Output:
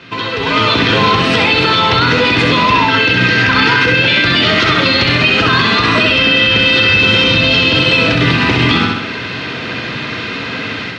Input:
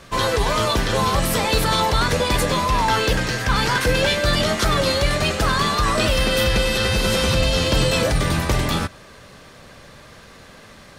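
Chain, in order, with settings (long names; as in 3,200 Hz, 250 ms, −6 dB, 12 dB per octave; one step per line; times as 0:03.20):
downward compressor 4 to 1, threshold −28 dBFS, peak gain reduction 12.5 dB
loudspeaker in its box 100–4,000 Hz, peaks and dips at 110 Hz +7 dB, 280 Hz +7 dB, 800 Hz −7 dB, 2,600 Hz +6 dB
automatic gain control gain up to 14.5 dB
spectral tilt +1.5 dB per octave
notch comb filter 570 Hz
flutter between parallel walls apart 11.2 metres, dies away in 0.74 s
boost into a limiter +9 dB
level −1 dB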